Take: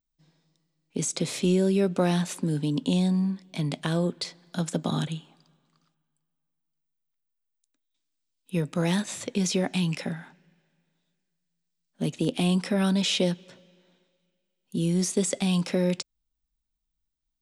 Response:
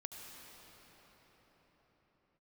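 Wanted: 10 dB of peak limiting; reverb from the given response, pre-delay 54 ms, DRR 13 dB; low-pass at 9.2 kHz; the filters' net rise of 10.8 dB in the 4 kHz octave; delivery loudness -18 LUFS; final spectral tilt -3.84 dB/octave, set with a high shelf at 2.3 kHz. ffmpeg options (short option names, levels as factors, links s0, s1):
-filter_complex "[0:a]lowpass=9200,highshelf=f=2300:g=8.5,equalizer=f=4000:t=o:g=6,alimiter=limit=0.2:level=0:latency=1,asplit=2[s0][s1];[1:a]atrim=start_sample=2205,adelay=54[s2];[s1][s2]afir=irnorm=-1:irlink=0,volume=0.299[s3];[s0][s3]amix=inputs=2:normalize=0,volume=2.37"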